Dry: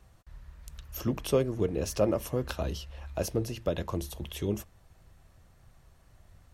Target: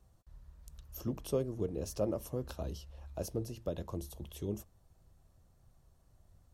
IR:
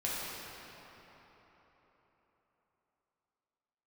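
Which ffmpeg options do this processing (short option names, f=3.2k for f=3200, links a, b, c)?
-af "equalizer=f=2.1k:w=0.84:g=-10,volume=-6.5dB"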